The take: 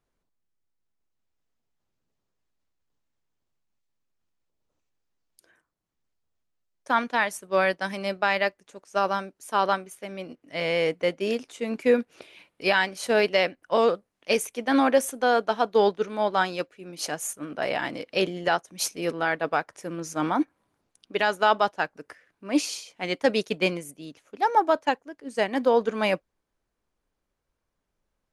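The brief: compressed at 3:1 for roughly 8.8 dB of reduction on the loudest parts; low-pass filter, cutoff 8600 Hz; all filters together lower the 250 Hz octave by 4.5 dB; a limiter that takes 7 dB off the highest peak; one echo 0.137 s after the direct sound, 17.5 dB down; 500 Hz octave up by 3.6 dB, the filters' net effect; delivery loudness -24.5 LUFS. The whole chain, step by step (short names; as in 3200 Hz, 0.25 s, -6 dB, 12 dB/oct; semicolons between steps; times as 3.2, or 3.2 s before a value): LPF 8600 Hz; bell 250 Hz -8 dB; bell 500 Hz +6 dB; compressor 3:1, threshold -24 dBFS; limiter -19 dBFS; echo 0.137 s -17.5 dB; gain +7 dB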